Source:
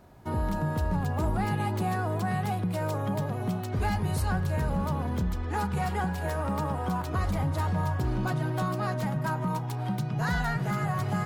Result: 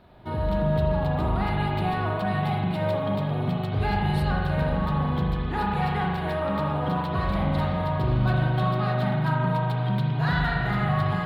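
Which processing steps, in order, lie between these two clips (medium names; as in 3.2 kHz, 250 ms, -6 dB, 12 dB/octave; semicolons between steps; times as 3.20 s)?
resonant high shelf 4.9 kHz -9.5 dB, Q 3; spring tank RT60 2 s, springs 40 ms, chirp 45 ms, DRR -1.5 dB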